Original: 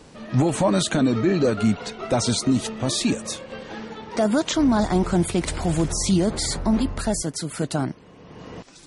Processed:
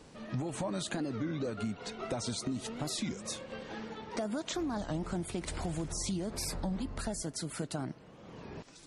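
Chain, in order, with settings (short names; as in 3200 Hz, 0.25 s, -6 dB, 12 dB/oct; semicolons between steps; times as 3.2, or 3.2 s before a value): compressor, threshold -25 dBFS, peak gain reduction 10 dB; on a send at -21 dB: reverb RT60 2.7 s, pre-delay 83 ms; on the sum: record warp 33 1/3 rpm, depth 250 cents; gain -7.5 dB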